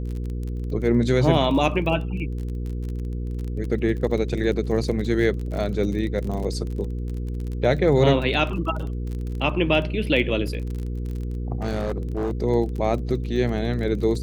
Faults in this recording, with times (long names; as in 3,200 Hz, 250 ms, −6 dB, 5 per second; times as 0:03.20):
surface crackle 30 per second −30 dBFS
mains hum 60 Hz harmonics 8 −28 dBFS
0:11.62–0:12.31: clipping −21 dBFS